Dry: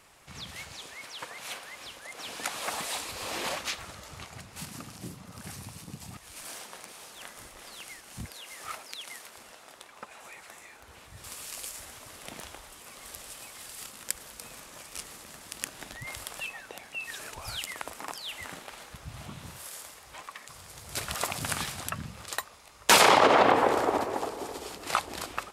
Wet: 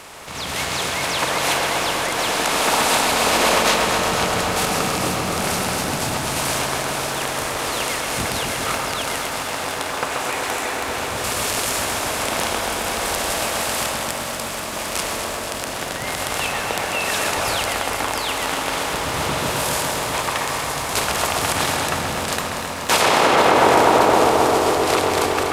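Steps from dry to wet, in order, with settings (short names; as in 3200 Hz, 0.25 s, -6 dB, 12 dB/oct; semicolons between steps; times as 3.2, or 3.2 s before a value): per-bin compression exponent 0.6; AGC gain up to 8 dB; limiter -7.5 dBFS, peak gain reduction 6 dB; on a send: darkening echo 0.132 s, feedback 84%, low-pass 2500 Hz, level -4 dB; on the sum: lo-fi delay 0.242 s, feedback 80%, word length 8-bit, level -9.5 dB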